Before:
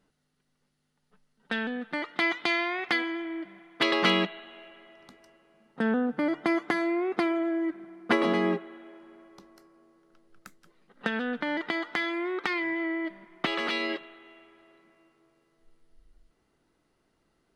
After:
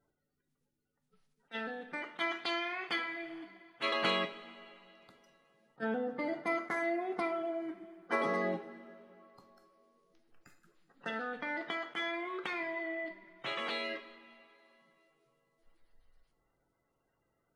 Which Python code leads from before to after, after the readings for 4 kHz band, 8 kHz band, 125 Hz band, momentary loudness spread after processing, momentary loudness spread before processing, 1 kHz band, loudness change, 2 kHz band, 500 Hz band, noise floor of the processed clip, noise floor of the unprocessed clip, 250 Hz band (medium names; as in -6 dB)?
-7.5 dB, no reading, -10.5 dB, 16 LU, 11 LU, -5.0 dB, -7.5 dB, -7.5 dB, -6.0 dB, -82 dBFS, -74 dBFS, -12.0 dB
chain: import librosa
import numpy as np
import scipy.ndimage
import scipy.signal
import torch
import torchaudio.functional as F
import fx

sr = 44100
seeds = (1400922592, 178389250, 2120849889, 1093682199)

y = fx.spec_quant(x, sr, step_db=30)
y = fx.rev_double_slope(y, sr, seeds[0], early_s=0.42, late_s=2.5, knee_db=-18, drr_db=5.0)
y = fx.attack_slew(y, sr, db_per_s=510.0)
y = F.gain(torch.from_numpy(y), -8.0).numpy()